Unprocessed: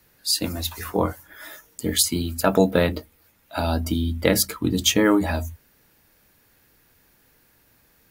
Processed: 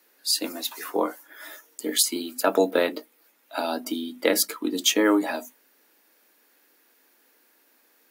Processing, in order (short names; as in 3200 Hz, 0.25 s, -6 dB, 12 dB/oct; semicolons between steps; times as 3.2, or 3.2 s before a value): steep high-pass 260 Hz 36 dB/oct; gain -1.5 dB